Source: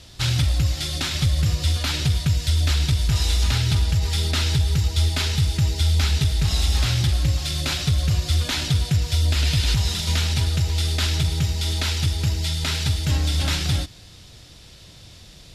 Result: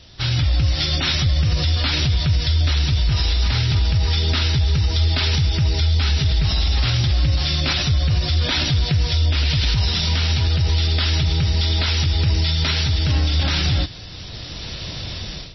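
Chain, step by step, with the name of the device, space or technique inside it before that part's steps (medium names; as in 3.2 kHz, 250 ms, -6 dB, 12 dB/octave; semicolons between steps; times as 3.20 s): low-bitrate web radio (level rider gain up to 16 dB; peak limiter -10.5 dBFS, peak gain reduction 9.5 dB; MP3 24 kbps 22.05 kHz)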